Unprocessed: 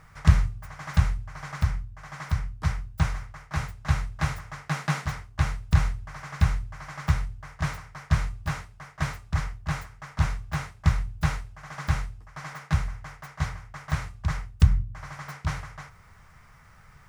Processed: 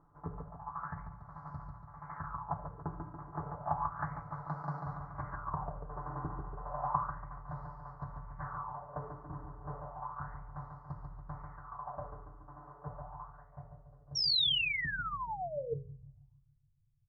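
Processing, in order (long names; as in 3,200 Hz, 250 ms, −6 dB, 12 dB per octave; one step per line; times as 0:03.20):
source passing by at 0:04.78, 17 m/s, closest 18 metres
downward compressor 4 to 1, threshold −38 dBFS, peak gain reduction 19 dB
Butterworth band-reject 2,900 Hz, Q 0.64
repeating echo 142 ms, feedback 57%, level −5 dB
on a send at −14 dB: convolution reverb RT60 0.80 s, pre-delay 32 ms
on the sum: low-pass filter sweep 1,000 Hz → 110 Hz, 0:13.09–0:16.13
sound drawn into the spectrogram fall, 0:14.15–0:15.74, 440–5,700 Hz −39 dBFS
mains-hum notches 60/120/180/240/300/360/420/480/540/600 Hz
comb filter 6.9 ms, depth 56%
auto-filter bell 0.32 Hz 320–4,500 Hz +17 dB
level −3 dB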